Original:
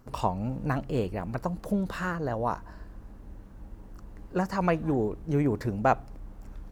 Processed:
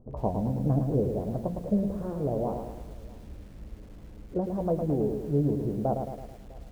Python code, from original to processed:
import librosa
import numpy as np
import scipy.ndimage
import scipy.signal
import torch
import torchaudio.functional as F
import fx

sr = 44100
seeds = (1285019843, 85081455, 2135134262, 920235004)

y = scipy.signal.sosfilt(scipy.signal.cheby1(3, 1.0, 620.0, 'lowpass', fs=sr, output='sos'), x)
y = fx.rider(y, sr, range_db=10, speed_s=2.0)
y = fx.doubler(y, sr, ms=14.0, db=-9.0)
y = y + 10.0 ** (-23.5 / 20.0) * np.pad(y, (int(652 * sr / 1000.0), 0))[:len(y)]
y = fx.echo_crushed(y, sr, ms=109, feedback_pct=55, bits=9, wet_db=-6)